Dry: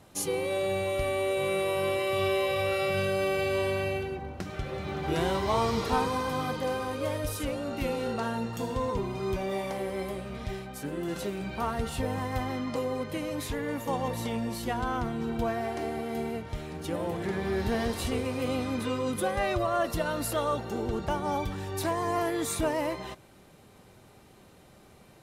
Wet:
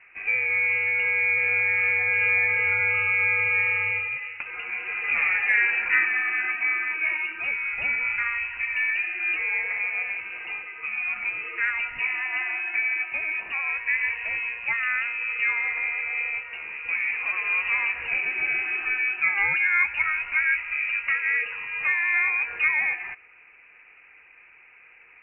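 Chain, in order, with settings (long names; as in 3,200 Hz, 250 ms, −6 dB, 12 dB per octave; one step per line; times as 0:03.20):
three-way crossover with the lows and the highs turned down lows −17 dB, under 240 Hz, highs −18 dB, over 2,000 Hz
voice inversion scrambler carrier 2,800 Hz
level +6.5 dB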